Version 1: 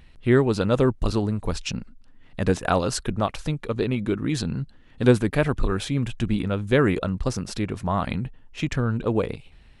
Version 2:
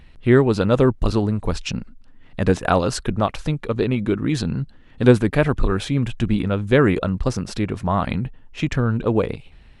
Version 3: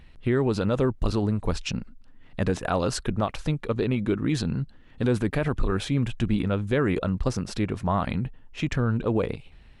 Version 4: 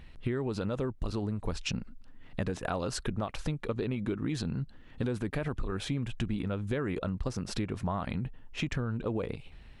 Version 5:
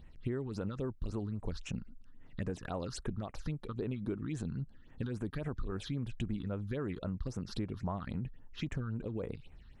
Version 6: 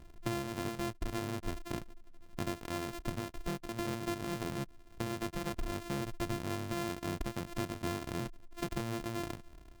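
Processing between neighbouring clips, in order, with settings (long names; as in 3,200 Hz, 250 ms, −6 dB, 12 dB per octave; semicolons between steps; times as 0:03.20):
high-shelf EQ 5,100 Hz −6 dB; level +4 dB
brickwall limiter −10.5 dBFS, peak gain reduction 9 dB; level −3.5 dB
downward compressor, threshold −29 dBFS, peak gain reduction 11 dB
all-pass phaser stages 6, 3.7 Hz, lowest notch 590–4,700 Hz; level −5 dB
samples sorted by size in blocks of 128 samples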